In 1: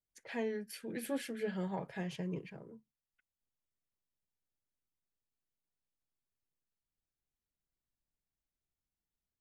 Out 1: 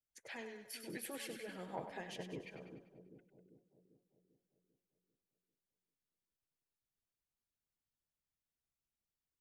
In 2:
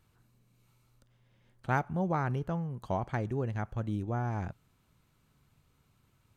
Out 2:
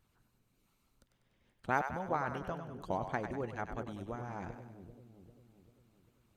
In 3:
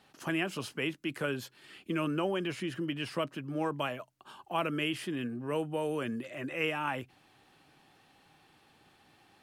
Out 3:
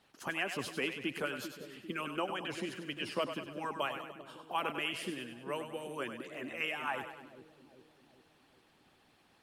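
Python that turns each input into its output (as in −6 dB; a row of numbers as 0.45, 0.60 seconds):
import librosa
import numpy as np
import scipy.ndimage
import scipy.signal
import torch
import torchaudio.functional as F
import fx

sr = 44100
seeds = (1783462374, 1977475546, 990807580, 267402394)

y = fx.hpss(x, sr, part='harmonic', gain_db=-14)
y = fx.echo_split(y, sr, split_hz=490.0, low_ms=395, high_ms=98, feedback_pct=52, wet_db=-8)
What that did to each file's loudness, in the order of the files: −7.5, −4.5, −3.5 LU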